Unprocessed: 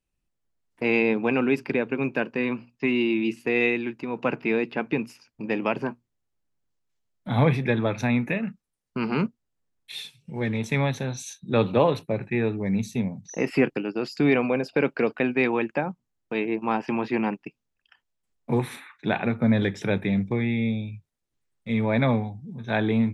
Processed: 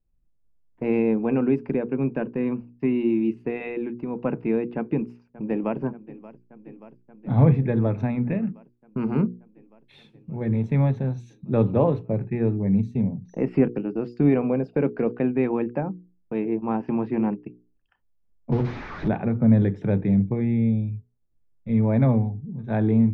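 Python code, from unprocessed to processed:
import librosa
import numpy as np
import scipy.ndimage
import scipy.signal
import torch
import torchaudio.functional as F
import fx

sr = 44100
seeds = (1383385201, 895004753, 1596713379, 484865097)

y = fx.echo_throw(x, sr, start_s=4.76, length_s=1.03, ms=580, feedback_pct=80, wet_db=-18.0)
y = fx.delta_mod(y, sr, bps=32000, step_db=-23.0, at=(18.52, 19.08))
y = fx.lowpass(y, sr, hz=1100.0, slope=6)
y = fx.tilt_eq(y, sr, slope=-3.0)
y = fx.hum_notches(y, sr, base_hz=60, count=8)
y = y * librosa.db_to_amplitude(-2.5)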